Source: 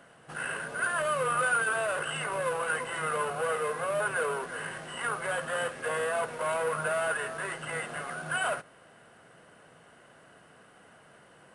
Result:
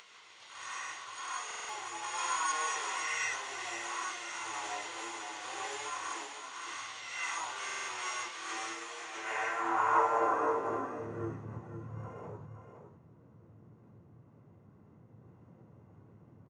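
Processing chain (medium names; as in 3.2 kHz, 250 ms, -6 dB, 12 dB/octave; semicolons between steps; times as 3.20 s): band-pass sweep 4.5 kHz -> 220 Hz, 6.20–7.88 s; random-step tremolo; gated-style reverb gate 140 ms rising, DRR -7.5 dB; upward compressor, threshold -53 dBFS; harmony voices -5 st -17 dB, +5 st -7 dB; peaking EQ 7 kHz +5.5 dB 2.4 oct; wide varispeed 0.7×; delay 514 ms -8 dB; buffer glitch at 1.46/7.65 s, samples 2048, times 4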